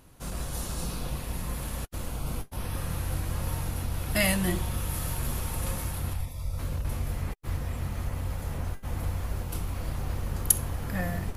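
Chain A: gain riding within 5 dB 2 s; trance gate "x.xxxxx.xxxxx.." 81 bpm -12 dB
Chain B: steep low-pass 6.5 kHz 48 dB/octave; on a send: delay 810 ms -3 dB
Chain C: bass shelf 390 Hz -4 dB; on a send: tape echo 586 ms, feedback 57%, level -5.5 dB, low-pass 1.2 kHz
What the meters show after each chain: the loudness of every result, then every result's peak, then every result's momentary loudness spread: -32.5 LUFS, -31.5 LUFS, -33.5 LUFS; -2.5 dBFS, -13.0 dBFS, -2.5 dBFS; 8 LU, 7 LU, 12 LU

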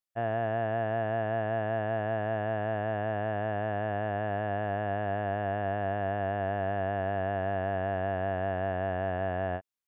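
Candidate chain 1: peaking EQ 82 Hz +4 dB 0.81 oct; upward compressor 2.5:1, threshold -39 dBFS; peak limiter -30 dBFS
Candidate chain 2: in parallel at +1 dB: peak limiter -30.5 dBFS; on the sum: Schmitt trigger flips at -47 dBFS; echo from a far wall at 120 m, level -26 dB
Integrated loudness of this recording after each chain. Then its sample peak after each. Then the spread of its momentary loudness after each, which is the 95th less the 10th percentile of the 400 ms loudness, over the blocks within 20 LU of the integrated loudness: -39.5 LUFS, -28.5 LUFS; -30.0 dBFS, -24.5 dBFS; 1 LU, 0 LU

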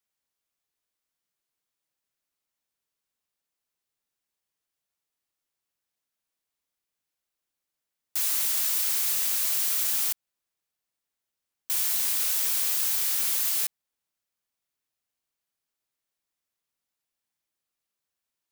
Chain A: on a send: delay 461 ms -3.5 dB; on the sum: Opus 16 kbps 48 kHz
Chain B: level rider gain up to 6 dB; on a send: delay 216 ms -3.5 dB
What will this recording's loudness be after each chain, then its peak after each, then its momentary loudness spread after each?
-25.0 LUFS, -16.0 LUFS; -13.0 dBFS, -4.0 dBFS; 8 LU, 8 LU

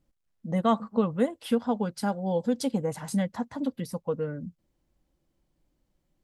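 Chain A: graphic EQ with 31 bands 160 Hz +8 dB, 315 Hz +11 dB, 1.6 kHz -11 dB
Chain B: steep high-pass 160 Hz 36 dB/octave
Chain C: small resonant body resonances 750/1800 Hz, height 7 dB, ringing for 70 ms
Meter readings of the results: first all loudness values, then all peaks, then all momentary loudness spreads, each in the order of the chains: -26.5 LUFS, -29.5 LUFS, -29.0 LUFS; -11.0 dBFS, -11.5 dBFS, -12.0 dBFS; 6 LU, 9 LU, 8 LU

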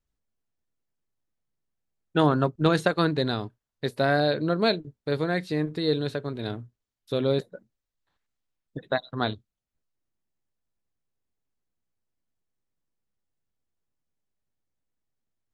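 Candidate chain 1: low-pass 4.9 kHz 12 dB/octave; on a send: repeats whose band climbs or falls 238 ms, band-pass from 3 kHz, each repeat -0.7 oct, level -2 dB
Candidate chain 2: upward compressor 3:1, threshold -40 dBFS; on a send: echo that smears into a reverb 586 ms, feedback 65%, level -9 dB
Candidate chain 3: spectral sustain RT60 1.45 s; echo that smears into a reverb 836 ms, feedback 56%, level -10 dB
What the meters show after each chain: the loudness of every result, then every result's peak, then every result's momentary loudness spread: -26.5 LUFS, -27.0 LUFS, -24.0 LUFS; -7.5 dBFS, -7.5 dBFS, -6.0 dBFS; 18 LU, 18 LU, 19 LU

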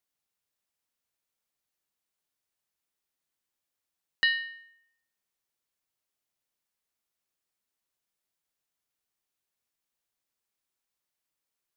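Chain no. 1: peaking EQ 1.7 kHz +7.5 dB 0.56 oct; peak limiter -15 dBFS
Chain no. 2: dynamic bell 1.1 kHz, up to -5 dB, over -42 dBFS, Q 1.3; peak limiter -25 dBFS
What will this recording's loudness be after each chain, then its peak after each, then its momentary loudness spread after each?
-25.5 LUFS, -35.0 LUFS; -15.0 dBFS, -25.0 dBFS; 15 LU, 12 LU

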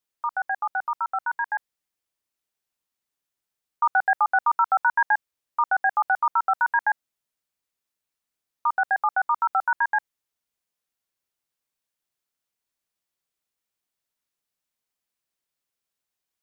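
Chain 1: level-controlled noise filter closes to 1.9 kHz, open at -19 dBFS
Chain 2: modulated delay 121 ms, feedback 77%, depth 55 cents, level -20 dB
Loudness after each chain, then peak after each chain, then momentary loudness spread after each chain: -24.0 LUFS, -24.0 LUFS; -12.0 dBFS, -10.0 dBFS; 8 LU, 9 LU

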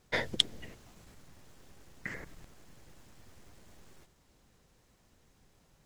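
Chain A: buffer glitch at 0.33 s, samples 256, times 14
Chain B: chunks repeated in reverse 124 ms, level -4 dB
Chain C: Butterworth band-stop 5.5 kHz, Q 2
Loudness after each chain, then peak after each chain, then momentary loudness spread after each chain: -41.5 LUFS, -33.0 LUFS, -34.5 LUFS; -18.5 dBFS, -4.5 dBFS, -5.5 dBFS; 18 LU, 21 LU, 21 LU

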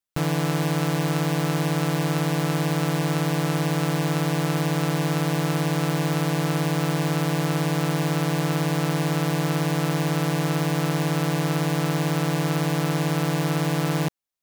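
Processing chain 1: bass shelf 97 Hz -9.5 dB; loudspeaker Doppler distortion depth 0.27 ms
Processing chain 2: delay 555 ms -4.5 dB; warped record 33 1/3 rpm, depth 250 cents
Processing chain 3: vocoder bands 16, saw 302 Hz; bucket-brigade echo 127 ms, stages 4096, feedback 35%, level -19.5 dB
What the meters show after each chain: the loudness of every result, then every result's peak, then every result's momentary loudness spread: -26.0 LUFS, -24.5 LUFS, -25.5 LUFS; -12.5 dBFS, -14.5 dBFS, -17.0 dBFS; 0 LU, 0 LU, 0 LU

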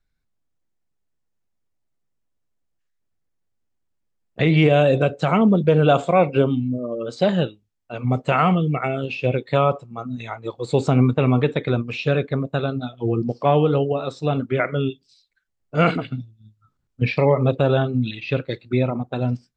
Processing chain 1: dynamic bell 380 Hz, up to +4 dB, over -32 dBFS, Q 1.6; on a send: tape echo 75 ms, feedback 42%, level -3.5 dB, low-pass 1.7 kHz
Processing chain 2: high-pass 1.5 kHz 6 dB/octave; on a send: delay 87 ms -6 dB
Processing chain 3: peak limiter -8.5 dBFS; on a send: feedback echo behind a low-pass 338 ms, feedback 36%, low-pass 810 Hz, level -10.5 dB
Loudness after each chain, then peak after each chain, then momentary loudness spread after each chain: -18.0 LUFS, -29.0 LUFS, -21.5 LUFS; -1.0 dBFS, -10.0 dBFS, -6.0 dBFS; 11 LU, 13 LU, 12 LU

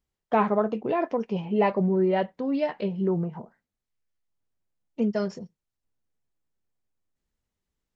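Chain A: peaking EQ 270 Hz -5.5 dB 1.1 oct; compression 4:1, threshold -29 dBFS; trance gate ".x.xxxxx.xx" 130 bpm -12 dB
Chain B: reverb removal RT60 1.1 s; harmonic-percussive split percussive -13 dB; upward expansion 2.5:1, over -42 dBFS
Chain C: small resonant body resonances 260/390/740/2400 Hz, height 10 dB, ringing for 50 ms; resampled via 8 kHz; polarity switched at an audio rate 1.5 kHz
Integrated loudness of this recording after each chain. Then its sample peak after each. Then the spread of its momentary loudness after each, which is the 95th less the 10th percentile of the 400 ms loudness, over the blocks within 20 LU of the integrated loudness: -35.0 LUFS, -35.0 LUFS, -18.5 LUFS; -20.5 dBFS, -13.5 dBFS, -6.0 dBFS; 13 LU, 11 LU, 11 LU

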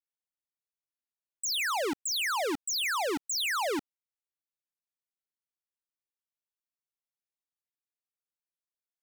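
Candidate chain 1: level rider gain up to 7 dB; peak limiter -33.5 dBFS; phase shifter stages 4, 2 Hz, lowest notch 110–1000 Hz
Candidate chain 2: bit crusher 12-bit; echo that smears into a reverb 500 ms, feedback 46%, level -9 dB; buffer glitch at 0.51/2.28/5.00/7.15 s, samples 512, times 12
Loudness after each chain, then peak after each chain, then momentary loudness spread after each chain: -36.0 LUFS, -29.5 LUFS; -27.5 dBFS, -22.0 dBFS; 6 LU, 17 LU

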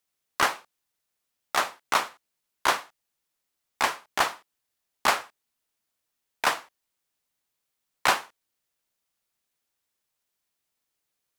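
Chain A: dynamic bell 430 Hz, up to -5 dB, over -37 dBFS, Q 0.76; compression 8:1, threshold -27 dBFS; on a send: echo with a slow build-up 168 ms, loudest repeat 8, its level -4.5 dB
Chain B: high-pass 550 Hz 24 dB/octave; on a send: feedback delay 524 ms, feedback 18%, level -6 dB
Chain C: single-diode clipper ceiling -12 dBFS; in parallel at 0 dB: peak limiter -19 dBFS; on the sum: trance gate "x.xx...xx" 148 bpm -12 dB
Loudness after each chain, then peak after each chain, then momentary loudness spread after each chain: -31.0 LUFS, -29.0 LUFS, -28.5 LUFS; -11.0 dBFS, -6.5 dBFS, -5.5 dBFS; 7 LU, 20 LU, 16 LU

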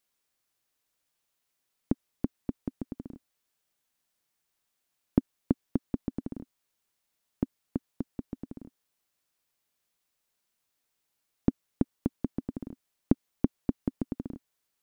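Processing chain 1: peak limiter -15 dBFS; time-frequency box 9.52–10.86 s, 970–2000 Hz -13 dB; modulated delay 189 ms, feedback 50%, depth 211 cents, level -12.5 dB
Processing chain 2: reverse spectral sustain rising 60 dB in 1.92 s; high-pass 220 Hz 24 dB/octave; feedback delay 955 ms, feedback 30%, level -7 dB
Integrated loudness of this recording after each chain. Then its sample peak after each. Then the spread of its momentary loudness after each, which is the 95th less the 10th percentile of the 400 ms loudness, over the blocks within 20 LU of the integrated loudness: -39.0 LUFS, -28.0 LUFS; -15.0 dBFS, -9.5 dBFS; 12 LU, 18 LU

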